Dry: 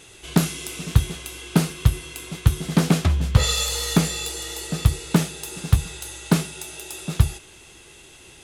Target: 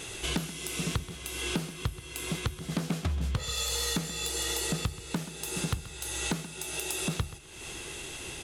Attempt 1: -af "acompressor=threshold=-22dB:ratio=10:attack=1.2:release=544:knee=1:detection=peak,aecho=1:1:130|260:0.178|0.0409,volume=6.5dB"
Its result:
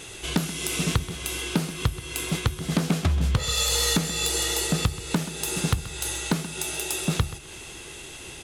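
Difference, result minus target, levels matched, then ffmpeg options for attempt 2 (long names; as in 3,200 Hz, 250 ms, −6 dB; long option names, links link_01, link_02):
downward compressor: peak gain reduction −7.5 dB
-af "acompressor=threshold=-30.5dB:ratio=10:attack=1.2:release=544:knee=1:detection=peak,aecho=1:1:130|260:0.178|0.0409,volume=6.5dB"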